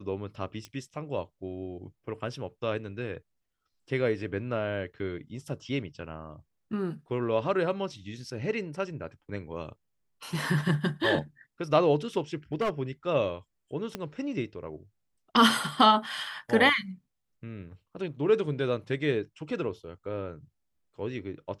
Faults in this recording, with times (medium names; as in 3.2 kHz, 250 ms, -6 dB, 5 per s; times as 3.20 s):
0.65 s: pop -25 dBFS
12.53–12.70 s: clipped -23.5 dBFS
13.95 s: pop -18 dBFS